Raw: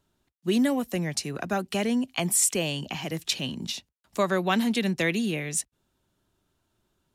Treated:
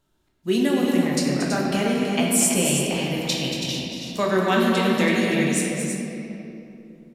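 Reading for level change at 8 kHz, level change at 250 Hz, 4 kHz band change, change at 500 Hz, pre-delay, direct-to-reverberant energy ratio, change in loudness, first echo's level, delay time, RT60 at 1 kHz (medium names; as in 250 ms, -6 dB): +3.5 dB, +6.0 dB, +5.0 dB, +6.5 dB, 14 ms, -4.0 dB, +5.0 dB, -7.0 dB, 231 ms, 2.6 s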